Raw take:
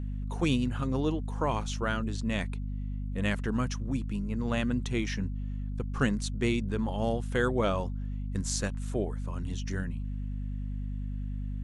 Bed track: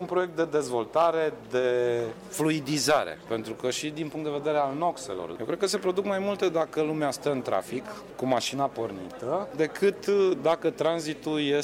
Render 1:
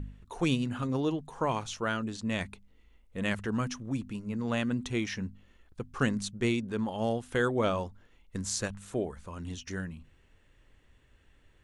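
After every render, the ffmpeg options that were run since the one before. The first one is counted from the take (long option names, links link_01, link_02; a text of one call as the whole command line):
ffmpeg -i in.wav -af "bandreject=frequency=50:width_type=h:width=4,bandreject=frequency=100:width_type=h:width=4,bandreject=frequency=150:width_type=h:width=4,bandreject=frequency=200:width_type=h:width=4,bandreject=frequency=250:width_type=h:width=4" out.wav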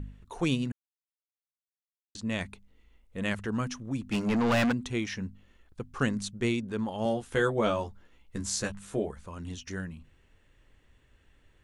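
ffmpeg -i in.wav -filter_complex "[0:a]asplit=3[link_01][link_02][link_03];[link_01]afade=type=out:start_time=4.11:duration=0.02[link_04];[link_02]asplit=2[link_05][link_06];[link_06]highpass=frequency=720:poles=1,volume=29dB,asoftclip=type=tanh:threshold=-18dB[link_07];[link_05][link_07]amix=inputs=2:normalize=0,lowpass=frequency=4000:poles=1,volume=-6dB,afade=type=in:start_time=4.11:duration=0.02,afade=type=out:start_time=4.71:duration=0.02[link_08];[link_03]afade=type=in:start_time=4.71:duration=0.02[link_09];[link_04][link_08][link_09]amix=inputs=3:normalize=0,asettb=1/sr,asplit=3[link_10][link_11][link_12];[link_10]atrim=end=7.044[link_13];[link_11]atrim=start=7.04:end=9.11,asetpts=PTS-STARTPTS,afade=type=in:duration=0.004:curve=qsin,afade=type=out:start_time=2.066:duration=0.004:curve=qsin,asplit=2[link_14][link_15];[link_15]adelay=14,volume=-4.5dB[link_16];[link_14][link_16]amix=inputs=2:normalize=0,atrim=end_sample=91287[link_17];[link_12]atrim=start=9.106[link_18];[link_13][link_17]acrossfade=duration=0.004:curve1=hsin:curve2=qsin[link_19];[link_19][link_18]acrossfade=duration=0.004:curve1=qsin:curve2=hsin,asplit=3[link_20][link_21][link_22];[link_20]atrim=end=0.72,asetpts=PTS-STARTPTS,afade=type=out:start_time=0.716:duration=0.004:curve=hsin[link_23];[link_21]atrim=start=0.72:end=2.15,asetpts=PTS-STARTPTS,volume=0[link_24];[link_22]atrim=start=2.15,asetpts=PTS-STARTPTS,afade=type=in:duration=0.004:curve=hsin[link_25];[link_23][link_24][link_25]concat=n=3:v=0:a=1" out.wav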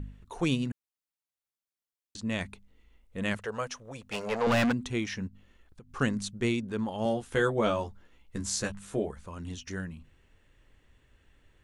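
ffmpeg -i in.wav -filter_complex "[0:a]asettb=1/sr,asplit=3[link_01][link_02][link_03];[link_01]atrim=end=3.374[link_04];[link_02]atrim=start=3.37:end=4.47,asetpts=PTS-STARTPTS,afade=type=in:duration=0.004:curve=qsin,afade=type=out:start_time=1.096:duration=0.004:curve=qsin,lowshelf=frequency=380:width_type=q:width=3:gain=-9[link_05];[link_03]atrim=start=4.466[link_06];[link_04][link_05]acrossfade=duration=0.004:curve1=hsin:curve2=qsin[link_07];[link_07][link_06]acrossfade=duration=0.004:curve1=qsin:curve2=hsin,asplit=3[link_08][link_09][link_10];[link_08]afade=type=out:start_time=5.27:duration=0.02[link_11];[link_09]acompressor=threshold=-46dB:ratio=8:attack=3.2:release=140:knee=1:detection=peak,afade=type=in:start_time=5.27:duration=0.02,afade=type=out:start_time=5.89:duration=0.02[link_12];[link_10]afade=type=in:start_time=5.89:duration=0.02[link_13];[link_11][link_12][link_13]amix=inputs=3:normalize=0" out.wav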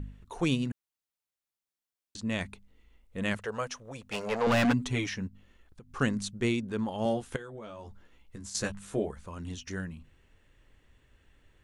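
ffmpeg -i in.wav -filter_complex "[0:a]asettb=1/sr,asplit=3[link_01][link_02][link_03];[link_01]atrim=end=4.644[link_04];[link_02]atrim=start=4.64:end=5.1,asetpts=PTS-STARTPTS,afade=type=in:duration=0.004:curve=qsin,afade=type=out:start_time=0.456:duration=0.004:curve=qsin,aecho=1:1:7.1:0.96,atrim=end_sample=20286[link_05];[link_03]atrim=start=5.096[link_06];[link_04][link_05]acrossfade=duration=0.004:curve1=hsin:curve2=qsin[link_07];[link_07][link_06]acrossfade=duration=0.004:curve1=qsin:curve2=hsin,asettb=1/sr,asplit=3[link_08][link_09][link_10];[link_08]atrim=end=7.364[link_11];[link_09]atrim=start=7.36:end=8.55,asetpts=PTS-STARTPTS,afade=type=in:duration=0.004:curve=qsin,afade=type=out:start_time=1.186:duration=0.004:curve=qsin,acompressor=threshold=-39dB:ratio=16:attack=3.2:release=140:knee=1:detection=peak[link_12];[link_10]atrim=start=8.546[link_13];[link_11][link_12]acrossfade=duration=0.004:curve1=hsin:curve2=qsin[link_14];[link_14][link_13]acrossfade=duration=0.004:curve1=qsin:curve2=hsin" out.wav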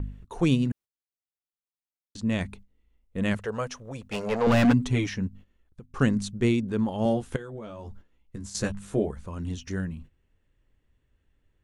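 ffmpeg -i in.wav -af "agate=range=-13dB:threshold=-51dB:ratio=16:detection=peak,lowshelf=frequency=500:gain=7.5" out.wav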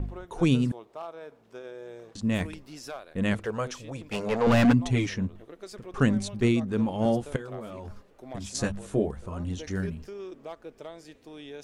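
ffmpeg -i in.wav -i bed.wav -filter_complex "[1:a]volume=-17dB[link_01];[0:a][link_01]amix=inputs=2:normalize=0" out.wav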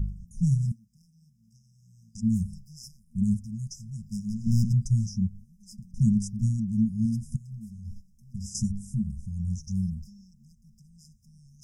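ffmpeg -i in.wav -af "afftfilt=real='re*(1-between(b*sr/4096,230,4900))':imag='im*(1-between(b*sr/4096,230,4900))':win_size=4096:overlap=0.75,lowshelf=frequency=350:gain=4" out.wav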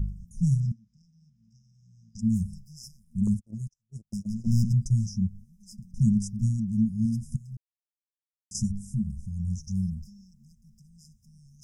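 ffmpeg -i in.wav -filter_complex "[0:a]asettb=1/sr,asplit=3[link_01][link_02][link_03];[link_01]atrim=end=0.604[link_04];[link_02]atrim=start=0.6:end=2.19,asetpts=PTS-STARTPTS,afade=type=in:duration=0.004:curve=qsin,afade=type=out:start_time=1.586:duration=0.004:curve=qsin,lowpass=frequency=5900:width=0.5412,lowpass=frequency=5900:width=1.3066[link_05];[link_03]atrim=start=2.186[link_06];[link_04][link_05]acrossfade=duration=0.004:curve1=hsin:curve2=qsin[link_07];[link_07][link_06]acrossfade=duration=0.004:curve1=qsin:curve2=hsin,asettb=1/sr,asplit=3[link_08][link_09][link_10];[link_08]atrim=end=3.274[link_11];[link_09]atrim=start=3.27:end=4.99,asetpts=PTS-STARTPTS,afade=type=in:duration=0.004:curve=qsin,afade=type=out:start_time=1.716:duration=0.004:curve=qsin,agate=range=-42dB:threshold=-36dB:ratio=16:release=100:detection=peak[link_12];[link_10]atrim=start=4.986[link_13];[link_11][link_12]acrossfade=duration=0.004:curve1=hsin:curve2=qsin[link_14];[link_14][link_13]acrossfade=duration=0.004:curve1=qsin:curve2=hsin,asplit=3[link_15][link_16][link_17];[link_15]atrim=end=7.57,asetpts=PTS-STARTPTS,afade=type=out:start_time=7.566:duration=0.004:curve=hsin[link_18];[link_16]atrim=start=7.57:end=8.51,asetpts=PTS-STARTPTS,volume=0[link_19];[link_17]atrim=start=8.51,asetpts=PTS-STARTPTS,afade=type=in:duration=0.004:curve=hsin[link_20];[link_18][link_19][link_20]concat=n=3:v=0:a=1" out.wav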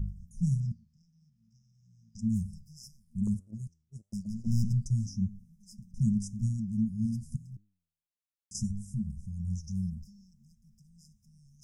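ffmpeg -i in.wav -af "flanger=delay=9.4:depth=3.6:regen=88:speed=1.7:shape=triangular" out.wav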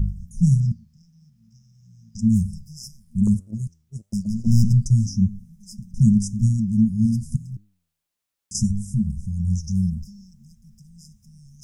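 ffmpeg -i in.wav -af "volume=11.5dB" out.wav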